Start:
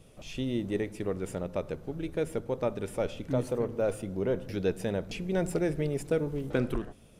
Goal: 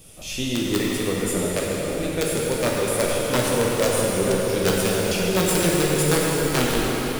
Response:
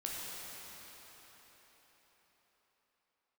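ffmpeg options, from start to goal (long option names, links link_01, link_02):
-filter_complex "[0:a]crystalizer=i=4:c=0,aeval=exprs='(mod(8.91*val(0)+1,2)-1)/8.91':channel_layout=same[link_01];[1:a]atrim=start_sample=2205[link_02];[link_01][link_02]afir=irnorm=-1:irlink=0,volume=7dB"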